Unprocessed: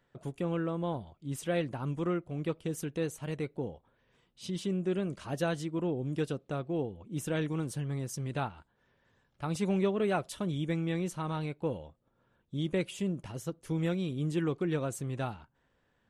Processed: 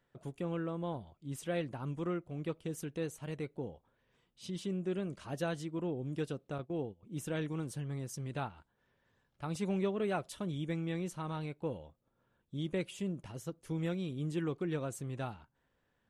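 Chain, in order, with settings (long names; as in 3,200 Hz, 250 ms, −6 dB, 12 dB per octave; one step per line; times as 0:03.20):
0:06.58–0:07.03: noise gate −38 dBFS, range −15 dB
level −4.5 dB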